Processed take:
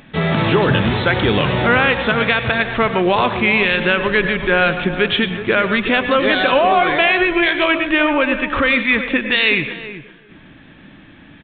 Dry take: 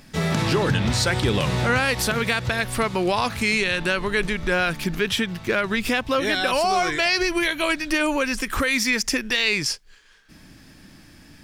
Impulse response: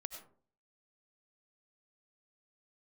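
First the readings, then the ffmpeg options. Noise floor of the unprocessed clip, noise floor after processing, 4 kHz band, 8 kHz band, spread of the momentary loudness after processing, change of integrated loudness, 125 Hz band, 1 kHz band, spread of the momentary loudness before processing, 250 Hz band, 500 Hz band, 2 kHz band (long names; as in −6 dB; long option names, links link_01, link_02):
−49 dBFS, −44 dBFS, +4.0 dB, below −40 dB, 4 LU, +6.5 dB, +4.0 dB, +7.5 dB, 4 LU, +6.5 dB, +7.5 dB, +7.5 dB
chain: -filter_complex "[0:a]lowshelf=frequency=79:gain=-10,asplit=2[link_01][link_02];[link_02]adelay=375,lowpass=frequency=1200:poles=1,volume=-10.5dB,asplit=2[link_03][link_04];[link_04]adelay=375,lowpass=frequency=1200:poles=1,volume=0.15[link_05];[link_01][link_03][link_05]amix=inputs=3:normalize=0,asplit=2[link_06][link_07];[1:a]atrim=start_sample=2205,asetrate=40131,aresample=44100[link_08];[link_07][link_08]afir=irnorm=-1:irlink=0,volume=7.5dB[link_09];[link_06][link_09]amix=inputs=2:normalize=0,aresample=8000,aresample=44100,volume=-1.5dB"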